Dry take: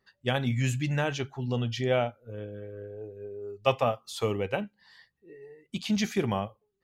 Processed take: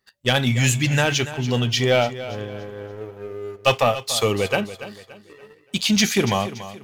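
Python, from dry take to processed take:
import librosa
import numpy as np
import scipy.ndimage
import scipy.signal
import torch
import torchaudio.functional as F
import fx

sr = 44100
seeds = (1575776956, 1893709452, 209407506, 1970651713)

y = fx.high_shelf(x, sr, hz=2100.0, db=10.5)
y = fx.leveller(y, sr, passes=2)
y = fx.echo_feedback(y, sr, ms=286, feedback_pct=37, wet_db=-14.0)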